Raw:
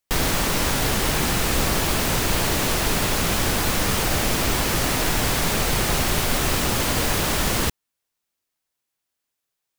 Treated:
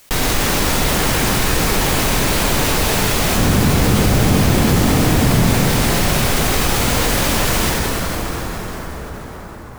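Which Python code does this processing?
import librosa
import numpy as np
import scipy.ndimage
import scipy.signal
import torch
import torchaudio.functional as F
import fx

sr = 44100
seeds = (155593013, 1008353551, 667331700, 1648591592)

y = fx.peak_eq(x, sr, hz=140.0, db=12.0, octaves=3.0, at=(3.35, 5.55))
y = fx.rev_plate(y, sr, seeds[0], rt60_s=3.7, hf_ratio=0.7, predelay_ms=0, drr_db=-1.0)
y = fx.env_flatten(y, sr, amount_pct=50)
y = y * 10.0 ** (-2.5 / 20.0)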